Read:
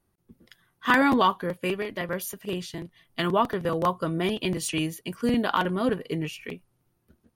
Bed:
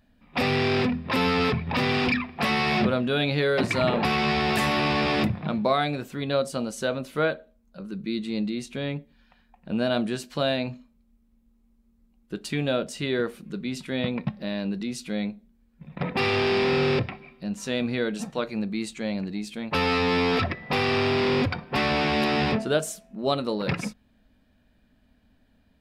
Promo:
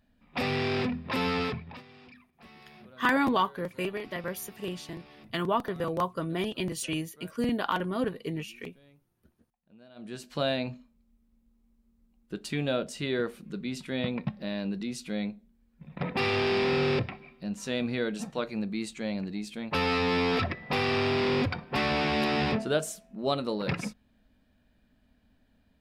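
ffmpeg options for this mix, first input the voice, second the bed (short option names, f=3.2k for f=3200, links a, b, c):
-filter_complex "[0:a]adelay=2150,volume=-4.5dB[a];[1:a]volume=20.5dB,afade=t=out:st=1.36:d=0.47:silence=0.0630957,afade=t=in:st=9.95:d=0.43:silence=0.0501187[b];[a][b]amix=inputs=2:normalize=0"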